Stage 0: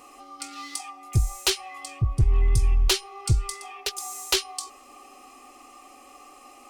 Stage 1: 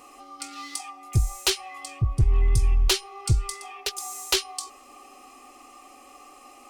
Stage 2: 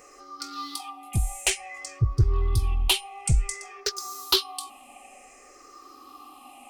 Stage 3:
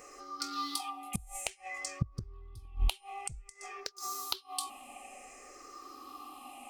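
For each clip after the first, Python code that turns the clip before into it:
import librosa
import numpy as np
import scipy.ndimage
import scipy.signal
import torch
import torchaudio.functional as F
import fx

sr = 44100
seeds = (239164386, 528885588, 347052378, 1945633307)

y1 = x
y2 = fx.spec_ripple(y1, sr, per_octave=0.54, drift_hz=-0.55, depth_db=14)
y2 = y2 * librosa.db_to_amplitude(-2.0)
y3 = fx.gate_flip(y2, sr, shuts_db=-17.0, range_db=-25)
y3 = y3 * librosa.db_to_amplitude(-1.0)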